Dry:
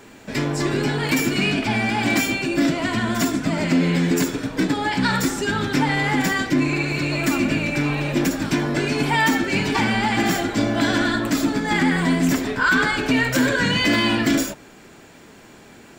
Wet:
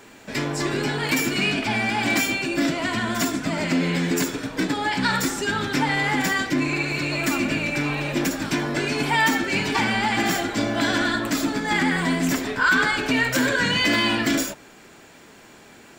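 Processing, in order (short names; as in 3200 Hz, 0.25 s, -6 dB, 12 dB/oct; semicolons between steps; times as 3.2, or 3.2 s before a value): low shelf 410 Hz -5.5 dB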